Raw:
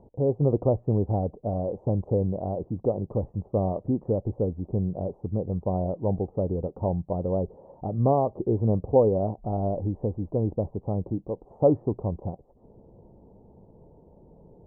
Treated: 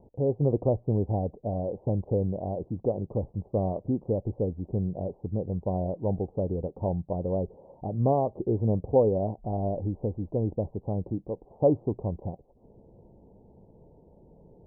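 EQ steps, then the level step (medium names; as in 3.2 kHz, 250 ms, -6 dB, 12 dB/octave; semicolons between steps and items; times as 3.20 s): low-pass 1 kHz 24 dB/octave; -2.0 dB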